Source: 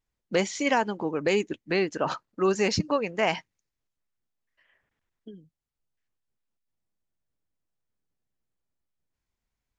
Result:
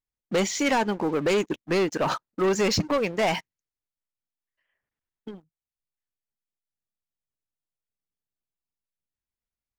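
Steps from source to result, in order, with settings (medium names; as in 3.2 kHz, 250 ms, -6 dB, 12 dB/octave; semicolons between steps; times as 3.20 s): waveshaping leveller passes 3; trim -5.5 dB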